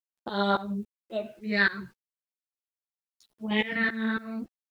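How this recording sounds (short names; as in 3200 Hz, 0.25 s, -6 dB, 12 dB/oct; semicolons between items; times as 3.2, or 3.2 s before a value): phasing stages 6, 0.43 Hz, lowest notch 800–2700 Hz; tremolo saw up 3.6 Hz, depth 95%; a quantiser's noise floor 12-bit, dither none; a shimmering, thickened sound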